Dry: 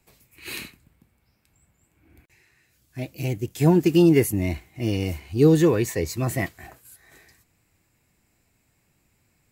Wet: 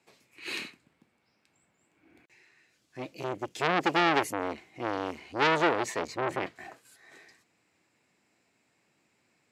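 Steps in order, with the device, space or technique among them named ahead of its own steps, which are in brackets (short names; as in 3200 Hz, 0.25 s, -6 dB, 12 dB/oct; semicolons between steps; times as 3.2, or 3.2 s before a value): 6.07–6.56 tone controls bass +5 dB, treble -9 dB; public-address speaker with an overloaded transformer (core saturation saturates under 2300 Hz; BPF 250–6000 Hz)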